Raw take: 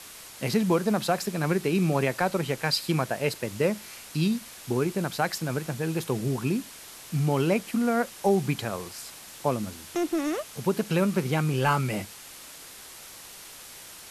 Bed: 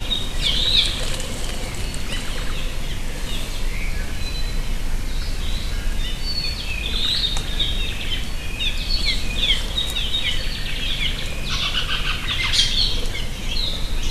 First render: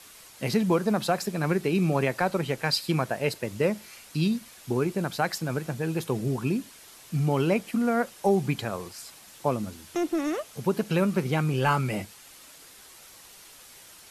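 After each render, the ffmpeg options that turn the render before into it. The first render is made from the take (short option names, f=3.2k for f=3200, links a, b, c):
-af "afftdn=nr=6:nf=-45"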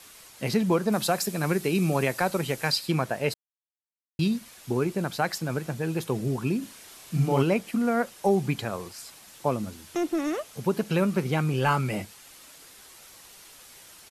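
-filter_complex "[0:a]asettb=1/sr,asplit=3[a][b][c];[a]atrim=end=0.924[d];[b]atrim=start=0.92:end=2.72,asetpts=PTS-STARTPTS,afade=t=in:d=0.004:c=qsin,afade=t=out:st=1.796:d=0.004:c=qsin,aemphasis=mode=production:type=cd[e];[c]atrim=start=2.716[f];[d][e]acrossfade=d=0.004:c1=hsin:c2=qsin[g];[g][f]acrossfade=d=0.004:c1=qsin:c2=hsin,asplit=3[h][i][j];[h]afade=t=out:st=6.61:d=0.02[k];[i]asplit=2[l][m];[m]adelay=37,volume=-2.5dB[n];[l][n]amix=inputs=2:normalize=0,afade=t=in:st=6.61:d=0.02,afade=t=out:st=7.42:d=0.02[o];[j]afade=t=in:st=7.42:d=0.02[p];[k][o][p]amix=inputs=3:normalize=0,asplit=3[q][r][s];[q]atrim=end=3.34,asetpts=PTS-STARTPTS,afade=t=out:st=3.336:d=0.004:c=hsin[t];[r]atrim=start=3.34:end=4.19,asetpts=PTS-STARTPTS,volume=0[u];[s]atrim=start=4.19,asetpts=PTS-STARTPTS,afade=t=in:d=0.004:c=hsin[v];[t][u][v]concat=n=3:v=0:a=1"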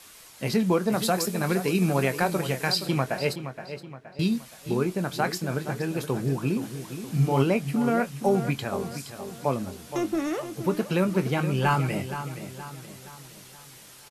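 -filter_complex "[0:a]asplit=2[a][b];[b]adelay=22,volume=-11dB[c];[a][c]amix=inputs=2:normalize=0,asplit=2[d][e];[e]adelay=471,lowpass=f=4.1k:p=1,volume=-10.5dB,asplit=2[f][g];[g]adelay=471,lowpass=f=4.1k:p=1,volume=0.47,asplit=2[h][i];[i]adelay=471,lowpass=f=4.1k:p=1,volume=0.47,asplit=2[j][k];[k]adelay=471,lowpass=f=4.1k:p=1,volume=0.47,asplit=2[l][m];[m]adelay=471,lowpass=f=4.1k:p=1,volume=0.47[n];[d][f][h][j][l][n]amix=inputs=6:normalize=0"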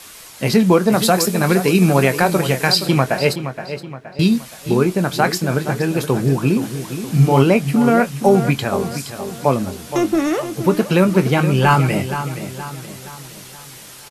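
-af "volume=10dB,alimiter=limit=-1dB:level=0:latency=1"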